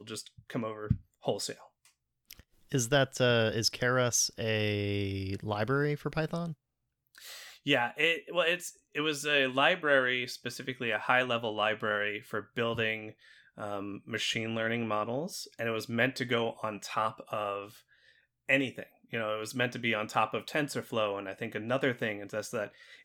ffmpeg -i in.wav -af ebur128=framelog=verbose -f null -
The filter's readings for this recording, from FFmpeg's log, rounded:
Integrated loudness:
  I:         -31.2 LUFS
  Threshold: -41.7 LUFS
Loudness range:
  LRA:         5.1 LU
  Threshold: -51.5 LUFS
  LRA low:   -34.0 LUFS
  LRA high:  -28.9 LUFS